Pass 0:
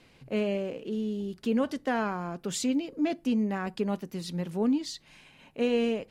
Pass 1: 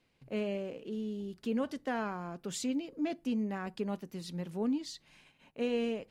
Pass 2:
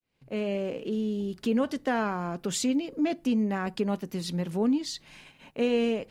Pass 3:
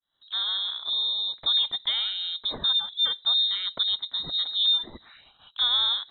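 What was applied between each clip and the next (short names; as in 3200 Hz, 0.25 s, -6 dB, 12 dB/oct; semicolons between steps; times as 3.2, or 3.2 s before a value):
gate -55 dBFS, range -9 dB; gain -6 dB
opening faded in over 0.69 s; in parallel at -1 dB: compressor, threshold -41 dBFS, peak gain reduction 12.5 dB; on the sum: gain +5 dB
envelope phaser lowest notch 240 Hz, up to 1300 Hz, full sweep at -33 dBFS; inverted band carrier 3900 Hz; gain +2.5 dB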